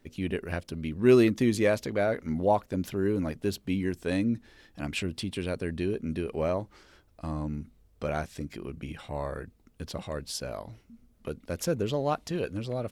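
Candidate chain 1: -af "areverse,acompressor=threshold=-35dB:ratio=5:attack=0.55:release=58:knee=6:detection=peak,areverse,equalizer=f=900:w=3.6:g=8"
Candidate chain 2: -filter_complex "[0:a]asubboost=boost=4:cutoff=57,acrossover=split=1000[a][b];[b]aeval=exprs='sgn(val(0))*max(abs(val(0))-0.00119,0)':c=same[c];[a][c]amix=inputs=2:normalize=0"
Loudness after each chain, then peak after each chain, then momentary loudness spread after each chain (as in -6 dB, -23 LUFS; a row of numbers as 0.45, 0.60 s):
-40.5, -30.5 LUFS; -26.0, -10.0 dBFS; 9, 15 LU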